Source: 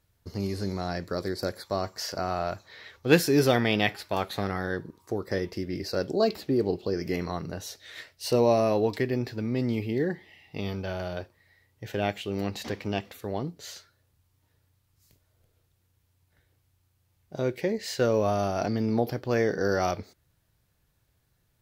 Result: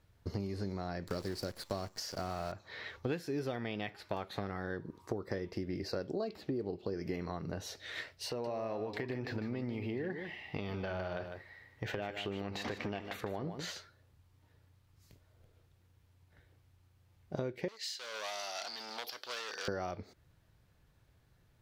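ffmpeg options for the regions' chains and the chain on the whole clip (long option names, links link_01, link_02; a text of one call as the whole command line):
ffmpeg -i in.wav -filter_complex "[0:a]asettb=1/sr,asplit=3[link_01][link_02][link_03];[link_01]atrim=end=1.074[link_04];[link_02]atrim=start=1.07:end=2.52,asetpts=PTS-STARTPTS,afade=type=in:duration=0.004:curve=qsin,afade=type=out:start_time=1.446:duration=0.004:curve=qsin,bass=frequency=250:gain=4,treble=frequency=4000:gain=12,acrusher=bits=7:dc=4:mix=0:aa=0.000001[link_05];[link_03]atrim=start=2.516[link_06];[link_04][link_05]acrossfade=duration=0.004:curve1=hsin:curve2=qsin[link_07];[link_07][link_06]acrossfade=duration=0.004:curve1=qsin:curve2=hsin,asettb=1/sr,asplit=3[link_08][link_09][link_10];[link_08]atrim=end=8.294[link_11];[link_09]atrim=start=8.29:end=13.72,asetpts=PTS-STARTPTS,afade=type=in:duration=0.004:curve=qsin,afade=type=out:start_time=5.426:duration=0.004:curve=qsin,equalizer=frequency=1400:width=0.44:gain=6.5,acompressor=threshold=-35dB:ratio=3:attack=3.2:release=140:knee=1:detection=peak,aecho=1:1:151:0.316,atrim=end_sample=239463[link_12];[link_10]atrim=start=13.716[link_13];[link_11][link_12]acrossfade=duration=0.004:curve1=hsin:curve2=qsin[link_14];[link_14][link_13]acrossfade=duration=0.004:curve1=qsin:curve2=hsin,asettb=1/sr,asplit=3[link_15][link_16][link_17];[link_15]atrim=end=17.684[link_18];[link_16]atrim=start=17.68:end=19.68,asetpts=PTS-STARTPTS,afade=type=in:duration=0.004:curve=qsin,afade=type=out:start_time=1.996:duration=0.004:curve=qsin,asoftclip=type=hard:threshold=-27dB,highpass=1300,highshelf=frequency=2800:width_type=q:width=1.5:gain=8[link_19];[link_17]atrim=start=19.676[link_20];[link_18][link_19]acrossfade=duration=0.004:curve1=hsin:curve2=qsin[link_21];[link_21][link_20]acrossfade=duration=0.004:curve1=qsin:curve2=hsin,acompressor=threshold=-37dB:ratio=12,lowpass=frequency=3100:poles=1,volume=3.5dB" out.wav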